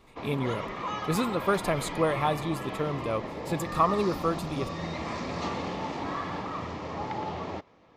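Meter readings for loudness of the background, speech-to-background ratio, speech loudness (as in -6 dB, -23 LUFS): -35.0 LUFS, 5.0 dB, -30.0 LUFS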